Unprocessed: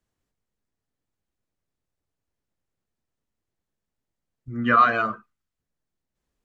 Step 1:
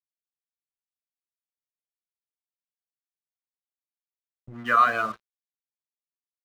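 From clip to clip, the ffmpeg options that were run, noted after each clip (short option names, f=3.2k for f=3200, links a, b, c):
-filter_complex "[0:a]acrossover=split=480[a][b];[a]acompressor=threshold=-35dB:ratio=6[c];[c][b]amix=inputs=2:normalize=0,aeval=exprs='sgn(val(0))*max(abs(val(0))-0.00668,0)':c=same,volume=-1.5dB"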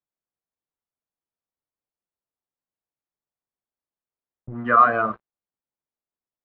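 -af "lowpass=1.1k,volume=8dB"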